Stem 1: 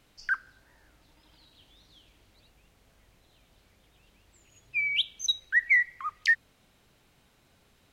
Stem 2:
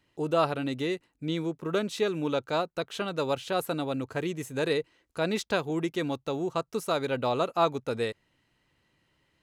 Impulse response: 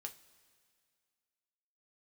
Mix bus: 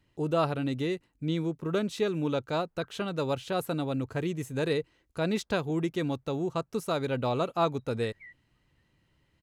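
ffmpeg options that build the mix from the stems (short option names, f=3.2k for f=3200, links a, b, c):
-filter_complex "[0:a]lowpass=f=1.6k:w=0.5412,lowpass=f=1.6k:w=1.3066,adelay=2500,volume=-19.5dB[a];[1:a]lowshelf=f=190:g=11,volume=-3dB,asplit=2[b][c];[c]apad=whole_len=459913[d];[a][d]sidechaingate=range=-33dB:threshold=-59dB:ratio=16:detection=peak[e];[e][b]amix=inputs=2:normalize=0"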